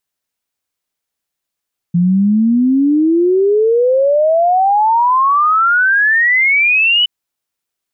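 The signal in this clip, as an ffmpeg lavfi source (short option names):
-f lavfi -i "aevalsrc='0.376*clip(min(t,5.12-t)/0.01,0,1)*sin(2*PI*170*5.12/log(3000/170)*(exp(log(3000/170)*t/5.12)-1))':d=5.12:s=44100"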